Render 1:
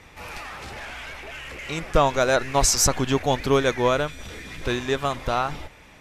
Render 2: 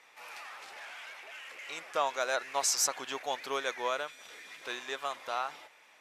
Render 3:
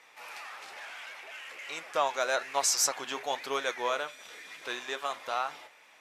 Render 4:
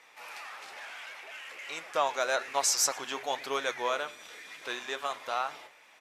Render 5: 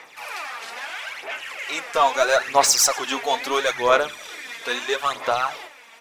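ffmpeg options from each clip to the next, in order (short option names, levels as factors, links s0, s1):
-af "highpass=660,volume=0.376"
-af "flanger=delay=6.2:depth=4.8:regen=-72:speed=1.1:shape=sinusoidal,volume=2.11"
-filter_complex "[0:a]asplit=3[s0][s1][s2];[s1]adelay=112,afreqshift=-140,volume=0.0631[s3];[s2]adelay=224,afreqshift=-280,volume=0.0195[s4];[s0][s3][s4]amix=inputs=3:normalize=0"
-filter_complex "[0:a]asplit=2[s0][s1];[s1]asoftclip=type=hard:threshold=0.0398,volume=0.631[s2];[s0][s2]amix=inputs=2:normalize=0,aphaser=in_gain=1:out_gain=1:delay=4.4:decay=0.59:speed=0.76:type=sinusoidal,volume=1.78"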